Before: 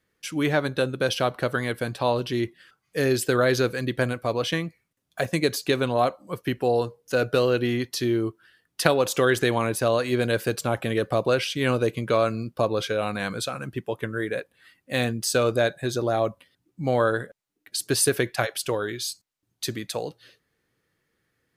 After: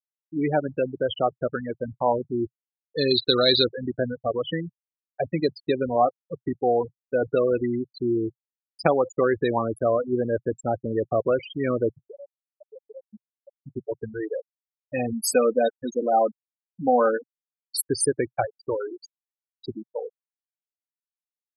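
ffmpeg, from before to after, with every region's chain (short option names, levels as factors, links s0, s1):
-filter_complex "[0:a]asettb=1/sr,asplit=3[s0][s1][s2];[s0]atrim=end=2.984[s3];[s1]atrim=start=2.98:end=3.64,asetpts=PTS-STARTPTS,afade=t=in:d=0.004:c=qsin,afade=t=out:st=0.656:d=0.004:c=qsin,lowpass=f=3900:t=q:w=10,bandreject=f=660:w=22[s4];[s2]atrim=start=3.636[s5];[s3][s4]acrossfade=d=0.004:c1=hsin:c2=qsin[s6];[s6][s5]acrossfade=d=0.004:c1=qsin:c2=hsin,asettb=1/sr,asplit=3[s7][s8][s9];[s7]atrim=end=11.914[s10];[s8]atrim=start=11.91:end=13.67,asetpts=PTS-STARTPTS,afade=t=in:d=0.004:c=qsin,afade=t=out:st=1.756:d=0.004:c=qsin,acompressor=threshold=0.0282:ratio=12:attack=3.2:release=140:knee=1:detection=peak,aeval=exprs='sgn(val(0))*max(abs(val(0))-0.00141,0)':c=same,equalizer=f=89:t=o:w=1.6:g=-3[s11];[s9]atrim=start=13.666[s12];[s10][s11]acrossfade=d=0.004:c1=hsin:c2=qsin[s13];[s13][s12]acrossfade=d=0.004:c1=qsin:c2=hsin,asettb=1/sr,asplit=3[s14][s15][s16];[s14]atrim=end=15.124[s17];[s15]atrim=start=15.12:end=17.85,asetpts=PTS-STARTPTS,afade=t=in:d=0.004:c=qsin,afade=t=out:st=2.726:d=0.004:c=qsin,equalizer=f=12000:t=o:w=0.44:g=13,aecho=1:1:4:0.67,atrim=end_sample=120393[s18];[s16]atrim=start=17.846[s19];[s17][s18]acrossfade=d=0.004:c1=hsin:c2=qsin[s20];[s20][s19]acrossfade=d=0.004:c1=qsin:c2=hsin,afftfilt=real='re*gte(hypot(re,im),0.158)':imag='im*gte(hypot(re,im),0.158)':win_size=1024:overlap=0.75,equalizer=f=125:t=o:w=0.33:g=-6,equalizer=f=800:t=o:w=0.33:g=7,equalizer=f=1600:t=o:w=0.33:g=-8"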